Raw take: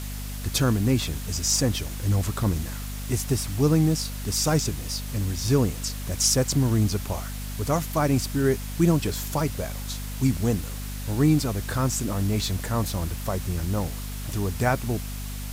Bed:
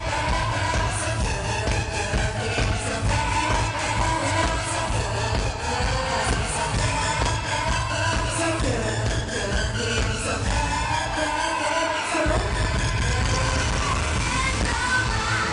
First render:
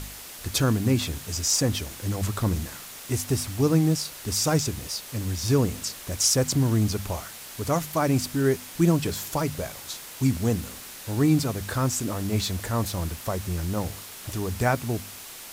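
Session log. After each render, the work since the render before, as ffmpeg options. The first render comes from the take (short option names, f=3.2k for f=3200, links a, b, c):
-af "bandreject=f=50:t=h:w=4,bandreject=f=100:t=h:w=4,bandreject=f=150:t=h:w=4,bandreject=f=200:t=h:w=4,bandreject=f=250:t=h:w=4"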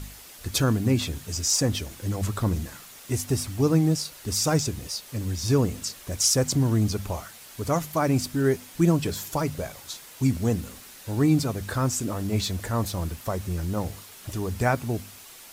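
-af "afftdn=nr=6:nf=-42"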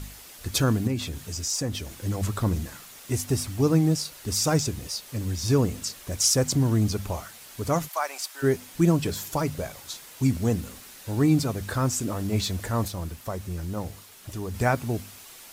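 -filter_complex "[0:a]asettb=1/sr,asplit=3[a][b][c];[a]atrim=end=0.874[d];[b]atrim=start=0.87:end=1.91,asetpts=PTS-STARTPTS,afade=t=in:d=0.004:c=qsin,afade=t=out:st=1.036:d=0.004:c=qsin,acompressor=threshold=-33dB:ratio=1.5:attack=3.2:release=140:knee=1:detection=peak[e];[c]atrim=start=1.906[f];[d][e]acrossfade=d=0.004:c1=hsin:c2=qsin[g];[g][f]acrossfade=d=0.004:c1=qsin:c2=hsin,asplit=3[h][i][j];[h]afade=t=out:st=7.87:d=0.02[k];[i]highpass=f=700:w=0.5412,highpass=f=700:w=1.3066,afade=t=in:st=7.87:d=0.02,afade=t=out:st=8.42:d=0.02[l];[j]afade=t=in:st=8.42:d=0.02[m];[k][l][m]amix=inputs=3:normalize=0,asplit=3[n][o][p];[n]atrim=end=12.882[q];[o]atrim=start=12.878:end=14.542,asetpts=PTS-STARTPTS,volume=-3.5dB[r];[p]atrim=start=14.538[s];[q][r]acrossfade=d=0.004:c1=hsin:c2=hsin[t];[t][s]acrossfade=d=0.004:c1=hsin:c2=hsin"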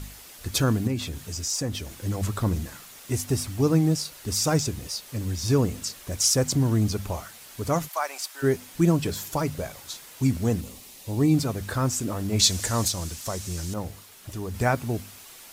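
-filter_complex "[0:a]asettb=1/sr,asplit=3[a][b][c];[a]atrim=end=10.614[d];[b]atrim=start=10.61:end=11.34,asetpts=PTS-STARTPTS,afade=t=in:d=0.004:c=qsin,afade=t=out:st=0.726:d=0.004:c=qsin,equalizer=f=1.5k:t=o:w=0.53:g=-13[e];[c]atrim=start=11.336[f];[d][e]acrossfade=d=0.004:c1=hsin:c2=qsin[g];[g][f]acrossfade=d=0.004:c1=qsin:c2=hsin,asettb=1/sr,asplit=3[h][i][j];[h]atrim=end=12.394[k];[i]atrim=start=12.39:end=13.74,asetpts=PTS-STARTPTS,afade=t=in:d=0.004:c=qsin,afade=t=out:st=1.346:d=0.004:c=qsin,equalizer=f=6.5k:w=0.61:g=14.5[l];[j]atrim=start=13.736[m];[k][l]acrossfade=d=0.004:c1=hsin:c2=qsin[n];[n][m]acrossfade=d=0.004:c1=qsin:c2=hsin"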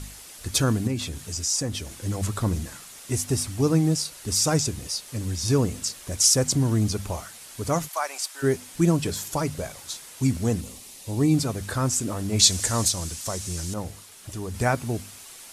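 -af "lowpass=f=11k:w=0.5412,lowpass=f=11k:w=1.3066,highshelf=f=8.1k:g=9.5"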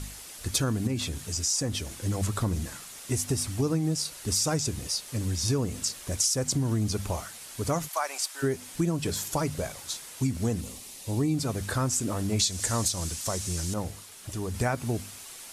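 -af "acompressor=threshold=-23dB:ratio=6"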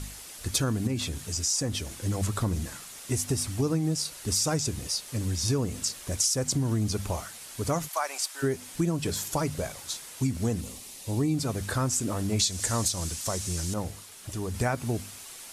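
-af anull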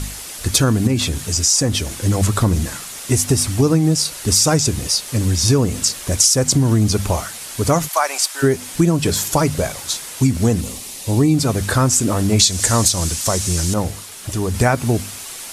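-af "volume=12dB,alimiter=limit=-1dB:level=0:latency=1"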